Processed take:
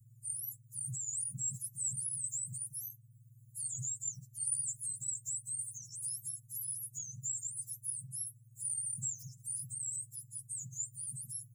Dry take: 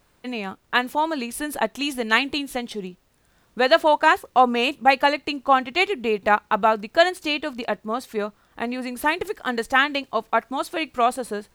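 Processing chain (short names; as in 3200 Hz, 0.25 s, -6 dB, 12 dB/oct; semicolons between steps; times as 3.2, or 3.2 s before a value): spectrum mirrored in octaves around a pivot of 1500 Hz; Chebyshev band-stop 130–7100 Hz, order 5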